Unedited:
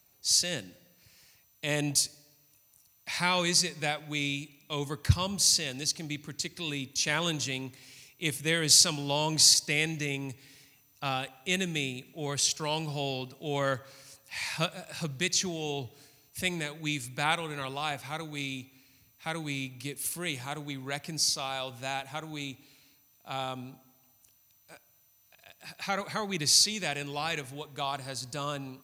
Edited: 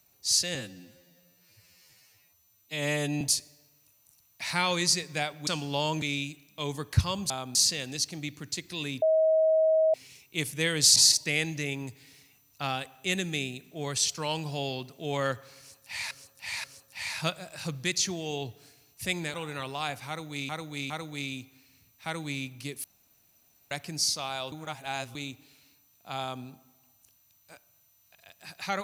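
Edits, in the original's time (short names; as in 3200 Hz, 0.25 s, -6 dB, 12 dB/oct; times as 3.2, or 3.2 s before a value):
0.55–1.88 stretch 2×
6.89–7.81 bleep 636 Hz -19.5 dBFS
8.83–9.38 move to 4.14
14–14.53 loop, 3 plays
16.7–17.36 cut
18.1–18.51 loop, 3 plays
20.04–20.91 room tone
21.72–22.35 reverse
23.4–23.65 copy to 5.42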